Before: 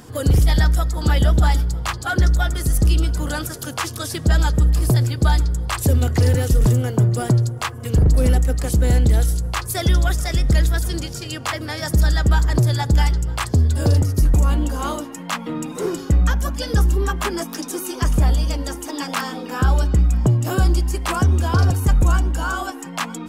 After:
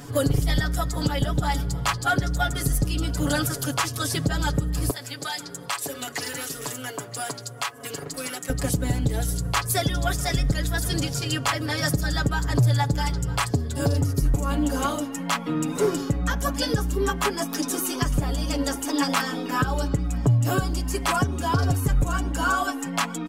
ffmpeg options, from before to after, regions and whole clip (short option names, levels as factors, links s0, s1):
-filter_complex "[0:a]asettb=1/sr,asplit=3[s0][s1][s2];[s0]atrim=end=4.904[s3];[s1]atrim=start=4.9:end=8.5,asetpts=PTS-STARTPTS,afade=t=in:d=0.004:c=qsin,afade=t=out:st=3.596:d=0.004:c=qsin,highpass=300,bandreject=f=60:t=h:w=6,bandreject=f=120:t=h:w=6,bandreject=f=180:t=h:w=6,bandreject=f=240:t=h:w=6,bandreject=f=300:t=h:w=6,bandreject=f=360:t=h:w=6,bandreject=f=420:t=h:w=6,bandreject=f=480:t=h:w=6,bandreject=f=540:t=h:w=6,acrossover=split=1100|2200[s4][s5][s6];[s4]acompressor=threshold=0.0126:ratio=4[s7];[s5]acompressor=threshold=0.0178:ratio=4[s8];[s6]acompressor=threshold=0.0251:ratio=4[s9];[s7][s8][s9]amix=inputs=3:normalize=0[s10];[s2]atrim=start=8.496[s11];[s3][s10]acrossfade=d=0.004:c1=hsin:c2=qsin[s12];[s12][s11]acrossfade=d=0.004:c1=qsin:c2=hsin,aecho=1:1:7.1:0.84,alimiter=limit=0.251:level=0:latency=1:release=439"